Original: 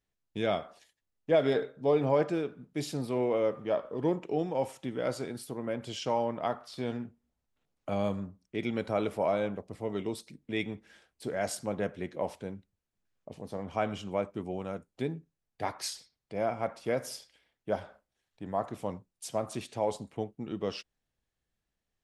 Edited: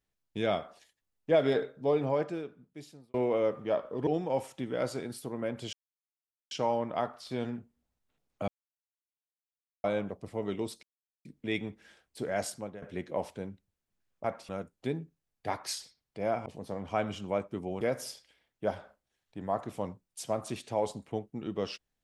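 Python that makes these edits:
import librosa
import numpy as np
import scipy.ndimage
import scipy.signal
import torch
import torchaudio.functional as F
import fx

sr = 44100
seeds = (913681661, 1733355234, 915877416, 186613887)

y = fx.edit(x, sr, fx.fade_out_span(start_s=1.67, length_s=1.47),
    fx.cut(start_s=4.07, length_s=0.25),
    fx.insert_silence(at_s=5.98, length_s=0.78),
    fx.silence(start_s=7.95, length_s=1.36),
    fx.insert_silence(at_s=10.3, length_s=0.42),
    fx.fade_out_to(start_s=11.47, length_s=0.4, floor_db=-19.5),
    fx.swap(start_s=13.29, length_s=1.35, other_s=16.61, other_length_s=0.25), tone=tone)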